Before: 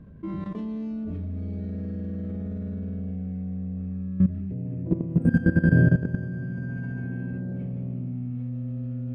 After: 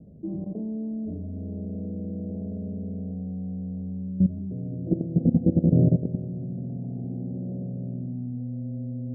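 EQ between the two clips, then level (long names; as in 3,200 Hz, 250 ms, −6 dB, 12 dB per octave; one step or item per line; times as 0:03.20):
high-pass filter 150 Hz 6 dB per octave
Butterworth low-pass 770 Hz 72 dB per octave
+2.0 dB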